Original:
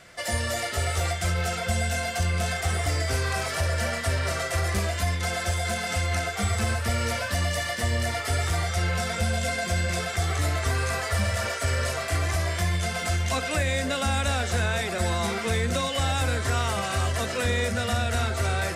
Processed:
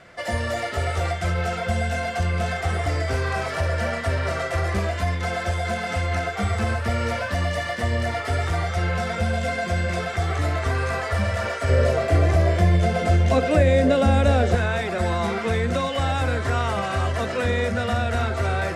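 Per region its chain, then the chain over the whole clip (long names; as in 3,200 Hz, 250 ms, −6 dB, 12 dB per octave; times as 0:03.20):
0:11.69–0:14.55: high-pass filter 42 Hz + low shelf with overshoot 740 Hz +6.5 dB, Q 1.5
whole clip: low-pass filter 1,600 Hz 6 dB per octave; low-shelf EQ 120 Hz −4.5 dB; level +5 dB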